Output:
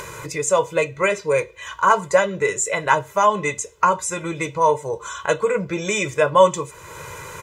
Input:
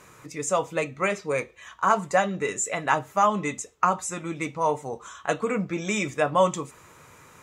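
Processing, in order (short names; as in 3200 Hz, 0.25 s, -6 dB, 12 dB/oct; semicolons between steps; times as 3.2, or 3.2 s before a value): comb 2 ms, depth 82%; in parallel at +2.5 dB: upward compressor, threshold -22 dBFS; on the sum: gain -4 dB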